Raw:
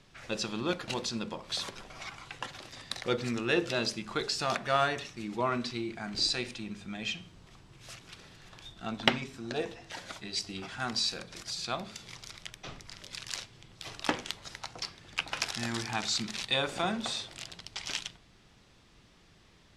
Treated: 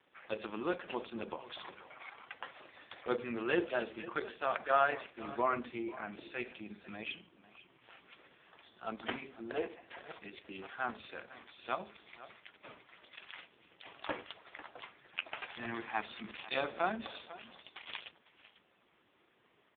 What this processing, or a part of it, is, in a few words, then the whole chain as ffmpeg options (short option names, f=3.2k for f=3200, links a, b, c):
satellite phone: -af "highpass=310,lowpass=3.1k,aecho=1:1:498:0.158" -ar 8000 -c:a libopencore_amrnb -b:a 4750